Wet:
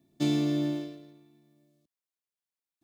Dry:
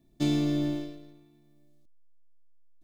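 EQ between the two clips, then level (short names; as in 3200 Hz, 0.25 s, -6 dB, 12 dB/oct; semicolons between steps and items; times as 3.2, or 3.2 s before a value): HPF 120 Hz 12 dB/oct; 0.0 dB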